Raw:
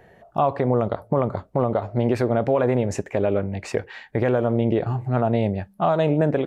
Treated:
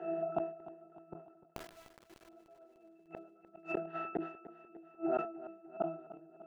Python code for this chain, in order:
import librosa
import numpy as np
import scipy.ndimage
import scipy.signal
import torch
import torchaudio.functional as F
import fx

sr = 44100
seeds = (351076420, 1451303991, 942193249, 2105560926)

y = fx.bin_compress(x, sr, power=0.6)
y = scipy.signal.sosfilt(scipy.signal.butter(4, 250.0, 'highpass', fs=sr, output='sos'), y)
y = fx.peak_eq(y, sr, hz=1500.0, db=3.0, octaves=1.7)
y = fx.hum_notches(y, sr, base_hz=60, count=8)
y = fx.octave_resonator(y, sr, note='E', decay_s=0.53)
y = fx.quant_dither(y, sr, seeds[0], bits=6, dither='none', at=(1.45, 2.29))
y = fx.gate_flip(y, sr, shuts_db=-36.0, range_db=-36)
y = fx.echo_feedback(y, sr, ms=299, feedback_pct=56, wet_db=-15.5)
y = fx.sustainer(y, sr, db_per_s=110.0)
y = F.gain(torch.from_numpy(y), 14.0).numpy()